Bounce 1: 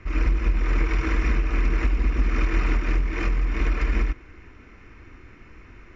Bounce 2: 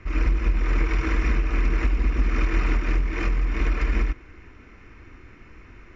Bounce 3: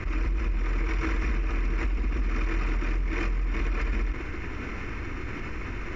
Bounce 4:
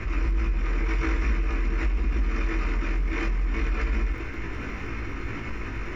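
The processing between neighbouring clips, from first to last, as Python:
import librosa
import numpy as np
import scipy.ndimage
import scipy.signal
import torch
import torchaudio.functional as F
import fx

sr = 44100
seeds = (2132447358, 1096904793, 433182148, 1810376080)

y1 = x
y2 = fx.env_flatten(y1, sr, amount_pct=70)
y2 = y2 * librosa.db_to_amplitude(-8.0)
y3 = fx.dmg_crackle(y2, sr, seeds[0], per_s=31.0, level_db=-49.0)
y3 = fx.doubler(y3, sr, ms=18.0, db=-4)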